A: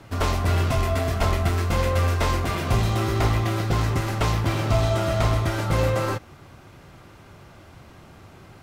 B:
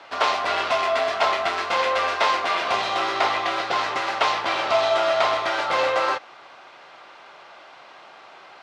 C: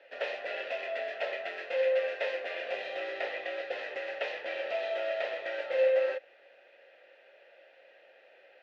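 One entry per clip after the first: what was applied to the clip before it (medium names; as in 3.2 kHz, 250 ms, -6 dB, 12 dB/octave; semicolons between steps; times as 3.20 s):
Chebyshev band-pass 710–4100 Hz, order 2; trim +7.5 dB
vowel filter e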